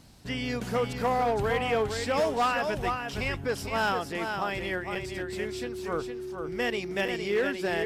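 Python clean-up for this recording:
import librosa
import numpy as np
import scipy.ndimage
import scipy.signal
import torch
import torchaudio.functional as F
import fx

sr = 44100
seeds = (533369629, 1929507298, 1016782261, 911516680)

y = fx.fix_declip(x, sr, threshold_db=-20.5)
y = fx.notch(y, sr, hz=370.0, q=30.0)
y = fx.fix_interpolate(y, sr, at_s=(4.95, 7.08), length_ms=5.0)
y = fx.fix_echo_inverse(y, sr, delay_ms=462, level_db=-6.5)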